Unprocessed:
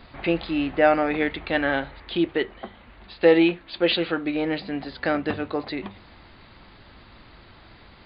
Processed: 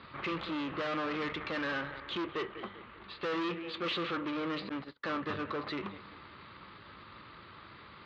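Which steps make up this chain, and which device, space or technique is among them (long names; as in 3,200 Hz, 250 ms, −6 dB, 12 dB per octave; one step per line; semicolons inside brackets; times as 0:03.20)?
analogue delay pedal into a guitar amplifier (bucket-brigade delay 194 ms, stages 4,096, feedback 44%, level −21 dB; tube saturation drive 32 dB, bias 0.5; loudspeaker in its box 110–4,300 Hz, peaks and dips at 250 Hz −5 dB, 720 Hz −9 dB, 1,200 Hz +9 dB)
0:04.69–0:05.29: noise gate −38 dBFS, range −39 dB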